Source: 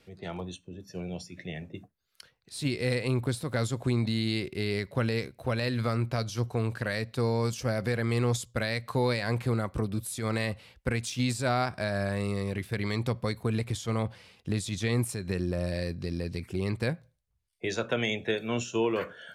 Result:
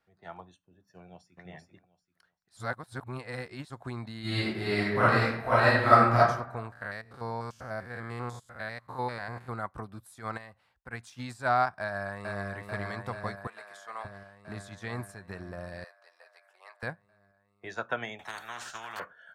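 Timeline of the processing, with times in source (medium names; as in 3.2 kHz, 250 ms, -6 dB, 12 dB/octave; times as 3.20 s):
0.98–1.39 s: echo throw 390 ms, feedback 20%, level -1.5 dB
2.57–3.70 s: reverse
4.20–6.18 s: reverb throw, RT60 1.1 s, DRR -9.5 dB
6.72–9.49 s: spectrogram pixelated in time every 100 ms
10.37–10.93 s: compression 1.5:1, threshold -43 dBFS
11.80–12.47 s: echo throw 440 ms, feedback 80%, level -3 dB
13.47–14.05 s: high-pass 700 Hz
15.84–16.83 s: elliptic high-pass 570 Hz, stop band 70 dB
18.19–19.00 s: spectrum-flattening compressor 10:1
whole clip: high-order bell 1.1 kHz +12 dB; upward expansion 1.5:1, over -43 dBFS; trim -3.5 dB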